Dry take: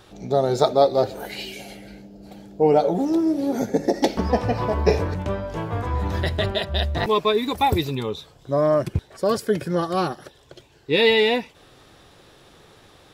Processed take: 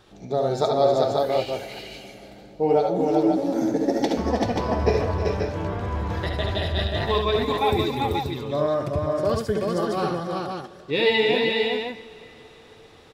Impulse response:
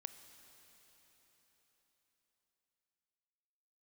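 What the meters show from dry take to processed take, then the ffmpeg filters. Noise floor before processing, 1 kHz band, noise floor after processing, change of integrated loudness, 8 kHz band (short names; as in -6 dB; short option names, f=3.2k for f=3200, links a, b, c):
-52 dBFS, -1.0 dB, -48 dBFS, -1.5 dB, -3.0 dB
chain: -filter_complex "[0:a]aecho=1:1:68|77|315|386|533:0.473|0.422|0.266|0.708|0.562,asplit=2[a][b];[1:a]atrim=start_sample=2205,lowpass=8.7k[c];[b][c]afir=irnorm=-1:irlink=0,volume=1dB[d];[a][d]amix=inputs=2:normalize=0,volume=-9dB"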